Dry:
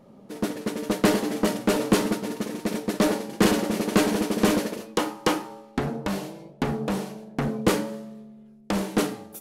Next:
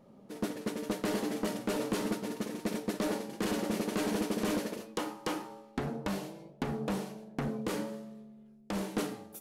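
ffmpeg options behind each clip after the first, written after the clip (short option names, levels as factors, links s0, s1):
-af "alimiter=limit=0.168:level=0:latency=1:release=143,volume=0.473"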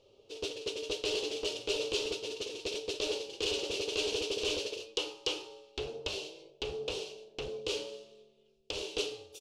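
-af "firequalizer=gain_entry='entry(100,0);entry(180,-29);entry(410,4);entry(660,-8);entry(1900,-14);entry(2700,12);entry(5900,6);entry(12000,-16)':delay=0.05:min_phase=1"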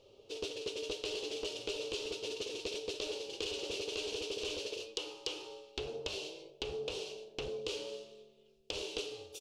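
-af "acompressor=threshold=0.0126:ratio=6,volume=1.26"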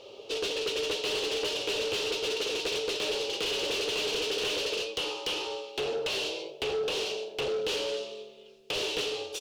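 -filter_complex "[0:a]asplit=2[s0][s1];[s1]highpass=f=720:p=1,volume=20,asoftclip=type=tanh:threshold=0.112[s2];[s0][s2]amix=inputs=2:normalize=0,lowpass=f=3600:p=1,volume=0.501,volume=0.841"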